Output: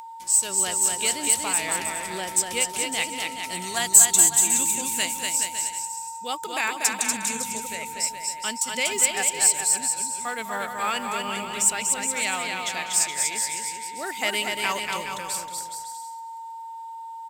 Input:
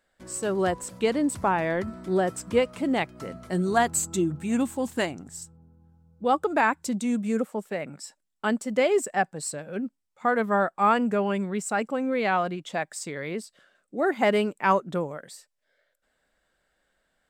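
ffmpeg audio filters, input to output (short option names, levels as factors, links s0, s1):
-filter_complex "[0:a]asplit=2[s0][s1];[s1]asplit=4[s2][s3][s4][s5];[s2]adelay=198,afreqshift=-71,volume=0.141[s6];[s3]adelay=396,afreqshift=-142,volume=0.0661[s7];[s4]adelay=594,afreqshift=-213,volume=0.0313[s8];[s5]adelay=792,afreqshift=-284,volume=0.0146[s9];[s6][s7][s8][s9]amix=inputs=4:normalize=0[s10];[s0][s10]amix=inputs=2:normalize=0,aeval=exprs='val(0)+0.0355*sin(2*PI*910*n/s)':c=same,tiltshelf=f=1400:g=-9,asplit=2[s11][s12];[s12]aecho=0:1:240|420|555|656.2|732.2:0.631|0.398|0.251|0.158|0.1[s13];[s11][s13]amix=inputs=2:normalize=0,aexciter=amount=2.2:drive=7.5:freq=2200,volume=0.562"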